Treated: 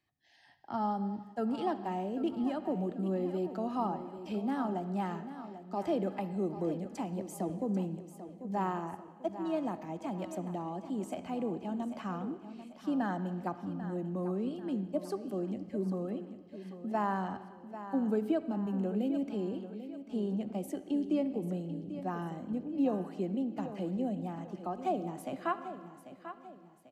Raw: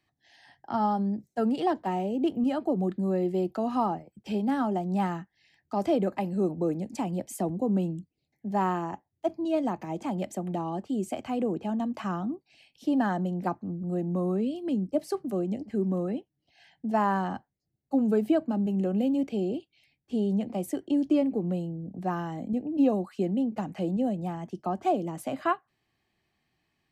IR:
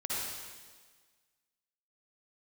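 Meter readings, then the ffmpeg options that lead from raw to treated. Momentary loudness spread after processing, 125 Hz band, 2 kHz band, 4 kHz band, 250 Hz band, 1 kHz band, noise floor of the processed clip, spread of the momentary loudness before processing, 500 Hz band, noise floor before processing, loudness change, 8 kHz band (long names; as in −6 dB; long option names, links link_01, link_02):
9 LU, −6.5 dB, −6.0 dB, −6.5 dB, −6.0 dB, −6.0 dB, −55 dBFS, 8 LU, −6.0 dB, −80 dBFS, −6.5 dB, can't be measured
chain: -filter_complex "[0:a]aecho=1:1:792|1584|2376|3168:0.251|0.105|0.0443|0.0186,asplit=2[link_01][link_02];[1:a]atrim=start_sample=2205,lowpass=6100[link_03];[link_02][link_03]afir=irnorm=-1:irlink=0,volume=-16dB[link_04];[link_01][link_04]amix=inputs=2:normalize=0,volume=-7.5dB"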